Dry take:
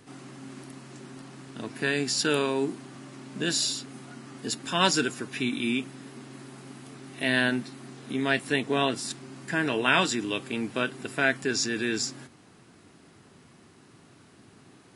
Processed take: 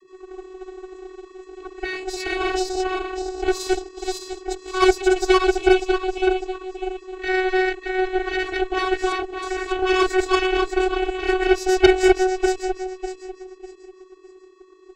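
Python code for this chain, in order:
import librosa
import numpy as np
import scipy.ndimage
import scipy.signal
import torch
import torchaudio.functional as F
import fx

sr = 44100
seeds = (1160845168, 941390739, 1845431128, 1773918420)

y = fx.reverse_delay_fb(x, sr, ms=299, feedback_pct=60, wet_db=-0.5)
y = fx.vocoder(y, sr, bands=32, carrier='square', carrier_hz=373.0)
y = fx.cheby_harmonics(y, sr, harmonics=(6, 7, 8), levels_db=(-12, -28, -10), full_scale_db=-9.5)
y = y * 10.0 ** (5.5 / 20.0)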